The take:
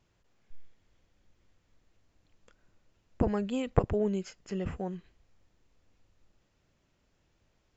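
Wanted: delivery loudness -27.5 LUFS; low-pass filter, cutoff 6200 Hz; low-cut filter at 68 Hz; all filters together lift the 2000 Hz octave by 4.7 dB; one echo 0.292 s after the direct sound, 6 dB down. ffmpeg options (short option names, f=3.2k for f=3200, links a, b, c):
-af "highpass=68,lowpass=6.2k,equalizer=f=2k:t=o:g=6,aecho=1:1:292:0.501,volume=4.5dB"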